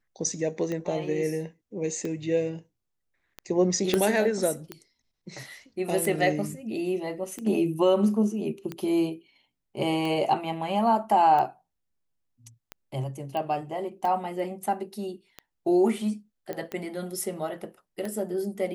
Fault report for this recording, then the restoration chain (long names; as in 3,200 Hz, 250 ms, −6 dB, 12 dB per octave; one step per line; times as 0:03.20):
scratch tick 45 rpm −20 dBFS
0:03.94: click −10 dBFS
0:13.37: click −20 dBFS
0:16.53: click −20 dBFS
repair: click removal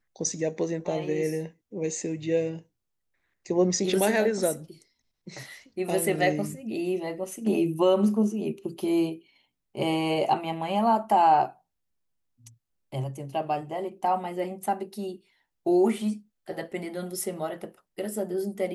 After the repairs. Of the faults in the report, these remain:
0:03.94: click
0:16.53: click